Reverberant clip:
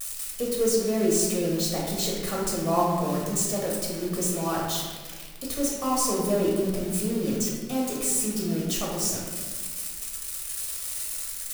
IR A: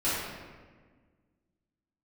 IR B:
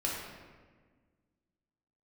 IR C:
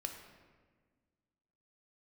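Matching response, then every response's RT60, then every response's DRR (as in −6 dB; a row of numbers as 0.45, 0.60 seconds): B; 1.5, 1.5, 1.5 seconds; −13.0, −4.5, 3.5 decibels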